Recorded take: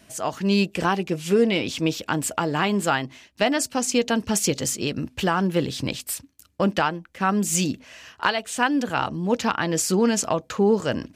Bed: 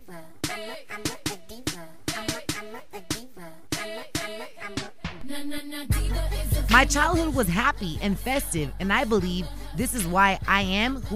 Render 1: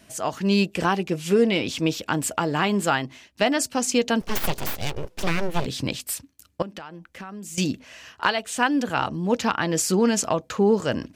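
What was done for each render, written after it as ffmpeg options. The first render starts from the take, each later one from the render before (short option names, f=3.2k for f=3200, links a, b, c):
-filter_complex "[0:a]asettb=1/sr,asplit=3[a][b][c];[a]atrim=end=4.214[d];[b]atrim=start=4.21:end=5.66,asetpts=PTS-STARTPTS,afade=t=in:d=0.004:c=qsin,afade=t=out:st=1.446:d=0.004:c=qsin,aeval=exprs='abs(val(0))':c=same[e];[c]atrim=start=5.656[f];[d][e]acrossfade=d=0.004:c1=hsin:c2=qsin[g];[g][f]acrossfade=d=0.004:c1=qsin:c2=hsin,asettb=1/sr,asplit=3[h][i][j];[h]atrim=end=6.624[k];[i]atrim=start=6.62:end=7.58,asetpts=PTS-STARTPTS,afade=t=in:d=0.004:c=qsin,afade=t=out:st=0.956:d=0.004:c=qsin,acompressor=threshold=-35dB:ratio=6:attack=3.2:release=140:knee=1:detection=peak[l];[j]atrim=start=7.576[m];[k][l]acrossfade=d=0.004:c1=hsin:c2=qsin[n];[n][m]acrossfade=d=0.004:c1=qsin:c2=hsin"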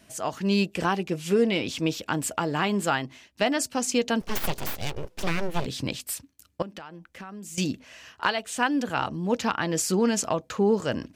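-af "volume=-3dB"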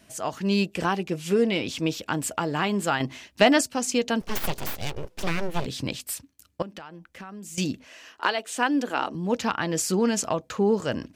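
-filter_complex "[0:a]asettb=1/sr,asplit=3[a][b][c];[a]atrim=end=3.004[d];[b]atrim=start=3:end=3.61,asetpts=PTS-STARTPTS,afade=t=in:d=0.004:c=qsin,afade=t=out:st=0.606:d=0.004:c=qsin,acontrast=79[e];[c]atrim=start=3.606[f];[d][e]acrossfade=d=0.004:c1=hsin:c2=qsin[g];[g][f]acrossfade=d=0.004:c1=qsin:c2=hsin,asettb=1/sr,asplit=3[h][i][j];[h]atrim=end=7.884[k];[i]atrim=start=7.88:end=9.15,asetpts=PTS-STARTPTS,afade=t=in:d=0.004:c=qsin,afade=t=out:st=1.266:d=0.004:c=qsin,lowshelf=f=200:t=q:w=1.5:g=-12.5[l];[j]atrim=start=9.146[m];[k][l]acrossfade=d=0.004:c1=hsin:c2=qsin[n];[n][m]acrossfade=d=0.004:c1=qsin:c2=hsin"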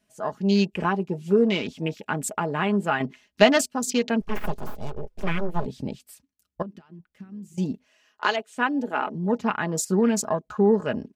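-af "afwtdn=0.0178,aecho=1:1:4.8:0.47"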